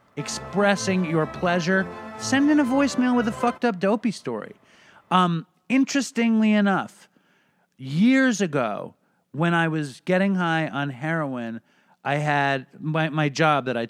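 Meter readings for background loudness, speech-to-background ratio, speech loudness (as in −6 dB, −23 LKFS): −36.5 LKFS, 13.5 dB, −23.0 LKFS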